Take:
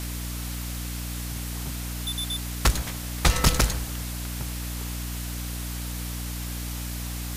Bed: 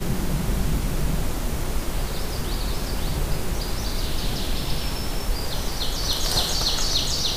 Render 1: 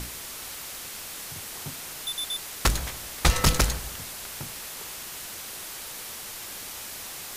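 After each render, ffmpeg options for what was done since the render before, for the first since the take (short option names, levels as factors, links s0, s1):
-af "bandreject=f=60:t=h:w=6,bandreject=f=120:t=h:w=6,bandreject=f=180:t=h:w=6,bandreject=f=240:t=h:w=6,bandreject=f=300:t=h:w=6"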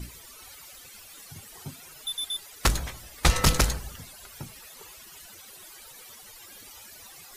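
-af "afftdn=nr=16:nf=-39"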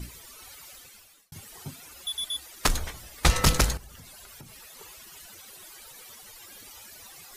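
-filter_complex "[0:a]asettb=1/sr,asplit=3[s0][s1][s2];[s0]atrim=end=1.874[s3];[s1]atrim=start=1.87:end=2.94,asetpts=PTS-STARTPTS,afade=t=in:d=0.004:c=qsin,afade=t=out:st=1.066:d=0.004:c=qsin,afreqshift=-77[s4];[s2]atrim=start=2.936[s5];[s3][s4]acrossfade=d=0.004:c1=hsin:c2=qsin[s6];[s6][s5]acrossfade=d=0.004:c1=qsin:c2=hsin,asettb=1/sr,asplit=3[s7][s8][s9];[s7]atrim=end=3.774[s10];[s8]atrim=start=3.77:end=4.79,asetpts=PTS-STARTPTS,afade=t=in:d=0.004:c=qsin,afade=t=out:st=1.016:d=0.004:c=qsin,acompressor=threshold=0.00708:ratio=6:attack=3.2:release=140:knee=1:detection=peak[s11];[s9]atrim=start=4.786[s12];[s10][s11]acrossfade=d=0.004:c1=hsin:c2=qsin[s13];[s13][s12]acrossfade=d=0.004:c1=qsin:c2=hsin,asplit=2[s14][s15];[s14]atrim=end=1.32,asetpts=PTS-STARTPTS,afade=t=out:st=0.73:d=0.59[s16];[s15]atrim=start=1.32,asetpts=PTS-STARTPTS,afade=t=in:d=0.004:c=hsin[s17];[s16][s17]concat=n=2:v=0:a=1"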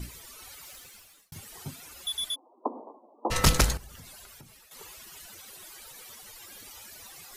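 -filter_complex "[0:a]asettb=1/sr,asplit=3[s0][s1][s2];[s0]atrim=end=0.634[s3];[s1]atrim=start=0.63:end=1.36,asetpts=PTS-STARTPTS,afade=t=in:d=0.004:c=qsin,afade=t=out:st=0.726:d=0.004:c=qsin,acrusher=bits=3:mode=log:mix=0:aa=0.000001[s4];[s2]atrim=start=1.356[s5];[s3][s4]acrossfade=d=0.004:c1=hsin:c2=qsin[s6];[s6][s5]acrossfade=d=0.004:c1=qsin:c2=hsin,asplit=3[s7][s8][s9];[s7]afade=t=out:st=2.34:d=0.02[s10];[s8]asuperpass=centerf=490:order=20:qfactor=0.59,afade=t=in:st=2.34:d=0.02,afade=t=out:st=3.3:d=0.02[s11];[s9]afade=t=in:st=3.3:d=0.02[s12];[s10][s11][s12]amix=inputs=3:normalize=0,asplit=2[s13][s14];[s13]atrim=end=4.71,asetpts=PTS-STARTPTS,afade=t=out:st=4.12:d=0.59:silence=0.281838[s15];[s14]atrim=start=4.71,asetpts=PTS-STARTPTS,afade=t=in:d=0.004:c=hsin:silence=0.281838[s16];[s15][s16]concat=n=2:v=0:a=1"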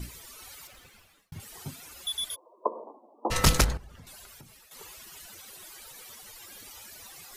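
-filter_complex "[0:a]asettb=1/sr,asplit=3[s0][s1][s2];[s0]atrim=end=0.674[s3];[s1]atrim=start=0.67:end=1.4,asetpts=PTS-STARTPTS,afade=t=in:d=0.004:c=qsin,afade=t=out:st=0.726:d=0.004:c=qsin,bass=f=250:g=4,treble=f=4000:g=-10[s4];[s2]atrim=start=1.396[s5];[s3][s4]acrossfade=d=0.004:c1=hsin:c2=qsin[s6];[s6][s5]acrossfade=d=0.004:c1=qsin:c2=hsin,asettb=1/sr,asplit=3[s7][s8][s9];[s7]atrim=end=2.304[s10];[s8]atrim=start=2.3:end=2.84,asetpts=PTS-STARTPTS,afade=t=in:d=0.004:c=qsin,afade=t=out:st=0.536:d=0.004:c=qsin,aecho=1:1:1.9:0.97,atrim=end_sample=23814[s11];[s9]atrim=start=2.836[s12];[s10][s11]acrossfade=d=0.004:c1=hsin:c2=qsin[s13];[s13][s12]acrossfade=d=0.004:c1=qsin:c2=hsin,asettb=1/sr,asplit=3[s14][s15][s16];[s14]atrim=end=3.644[s17];[s15]atrim=start=3.64:end=4.07,asetpts=PTS-STARTPTS,afade=t=in:d=0.004:c=qsin,afade=t=out:st=0.426:d=0.004:c=qsin,lowpass=f=1700:p=1[s18];[s16]atrim=start=4.066[s19];[s17][s18]acrossfade=d=0.004:c1=hsin:c2=qsin[s20];[s20][s19]acrossfade=d=0.004:c1=qsin:c2=hsin"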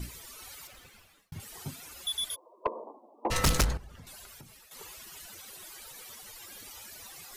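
-af "asoftclip=type=tanh:threshold=0.119"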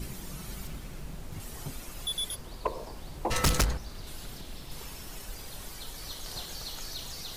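-filter_complex "[1:a]volume=0.133[s0];[0:a][s0]amix=inputs=2:normalize=0"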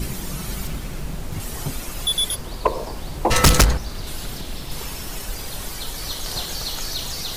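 -af "volume=3.76"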